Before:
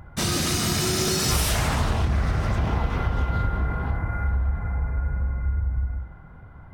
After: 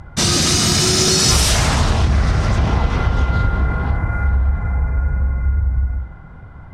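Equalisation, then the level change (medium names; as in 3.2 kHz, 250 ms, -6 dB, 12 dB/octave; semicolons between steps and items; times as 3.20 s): low-pass 6.5 kHz 12 dB/octave; tone controls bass +1 dB, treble +9 dB; +6.5 dB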